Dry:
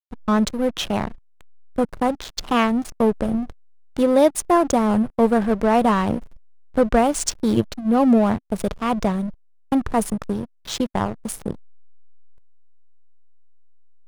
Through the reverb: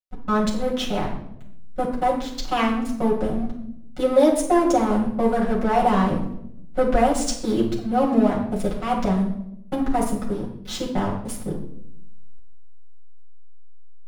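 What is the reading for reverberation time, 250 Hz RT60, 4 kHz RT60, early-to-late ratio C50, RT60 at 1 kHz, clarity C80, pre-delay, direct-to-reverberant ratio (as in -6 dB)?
0.75 s, 1.1 s, 0.55 s, 6.0 dB, 0.65 s, 9.5 dB, 5 ms, -5.5 dB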